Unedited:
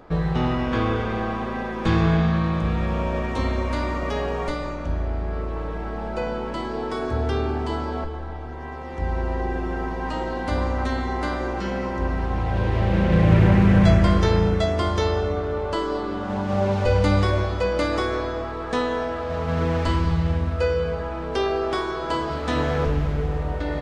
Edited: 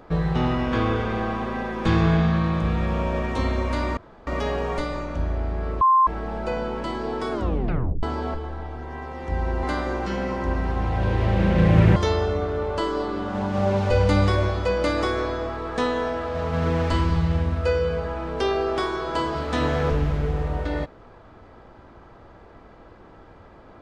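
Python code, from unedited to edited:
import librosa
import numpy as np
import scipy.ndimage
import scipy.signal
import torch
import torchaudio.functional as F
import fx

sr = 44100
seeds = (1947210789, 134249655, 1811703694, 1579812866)

y = fx.edit(x, sr, fx.insert_room_tone(at_s=3.97, length_s=0.3),
    fx.bleep(start_s=5.51, length_s=0.26, hz=1050.0, db=-13.0),
    fx.tape_stop(start_s=7.02, length_s=0.71),
    fx.cut(start_s=9.33, length_s=1.84),
    fx.cut(start_s=13.5, length_s=1.41), tone=tone)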